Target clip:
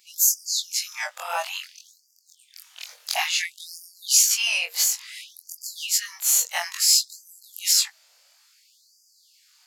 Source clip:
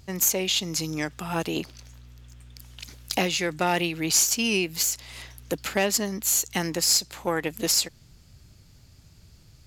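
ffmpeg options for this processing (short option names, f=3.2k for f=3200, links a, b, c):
-af "afftfilt=real='re':imag='-im':win_size=2048:overlap=0.75,asubboost=boost=5:cutoff=140,afftfilt=real='re*gte(b*sr/1024,460*pow(4700/460,0.5+0.5*sin(2*PI*0.58*pts/sr)))':imag='im*gte(b*sr/1024,460*pow(4700/460,0.5+0.5*sin(2*PI*0.58*pts/sr)))':win_size=1024:overlap=0.75,volume=8dB"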